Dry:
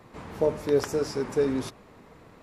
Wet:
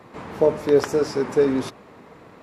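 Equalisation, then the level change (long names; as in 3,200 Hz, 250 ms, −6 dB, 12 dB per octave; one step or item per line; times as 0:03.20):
high-pass filter 170 Hz 6 dB per octave
high-shelf EQ 4,400 Hz −7 dB
+7.0 dB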